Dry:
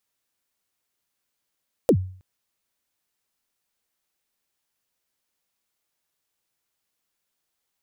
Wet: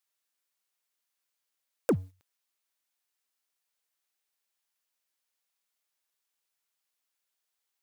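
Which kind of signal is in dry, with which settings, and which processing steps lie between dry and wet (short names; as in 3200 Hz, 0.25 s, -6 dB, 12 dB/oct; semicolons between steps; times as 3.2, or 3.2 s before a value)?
kick drum length 0.32 s, from 580 Hz, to 93 Hz, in 72 ms, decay 0.48 s, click on, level -10 dB
HPF 770 Hz 6 dB/oct; limiter -17 dBFS; sample leveller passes 2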